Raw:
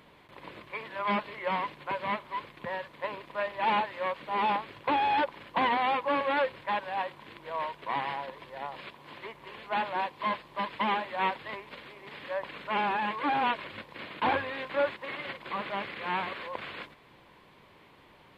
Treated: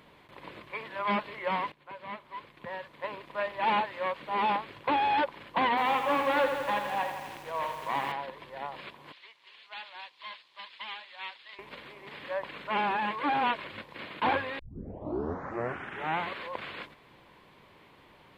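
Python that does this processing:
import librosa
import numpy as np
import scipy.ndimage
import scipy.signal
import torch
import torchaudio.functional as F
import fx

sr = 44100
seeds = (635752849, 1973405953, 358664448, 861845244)

y = fx.echo_crushed(x, sr, ms=82, feedback_pct=80, bits=8, wet_db=-7.5, at=(5.69, 8.12))
y = fx.bandpass_q(y, sr, hz=4300.0, q=1.4, at=(9.12, 11.59))
y = fx.edit(y, sr, fx.fade_in_from(start_s=1.72, length_s=1.73, floor_db=-15.5),
    fx.tape_start(start_s=14.59, length_s=1.72), tone=tone)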